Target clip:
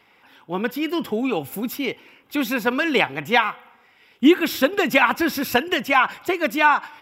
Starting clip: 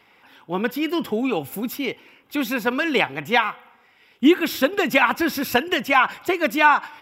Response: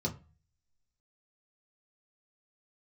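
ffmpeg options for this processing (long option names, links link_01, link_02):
-af "dynaudnorm=framelen=290:gausssize=11:maxgain=11.5dB,volume=-1dB"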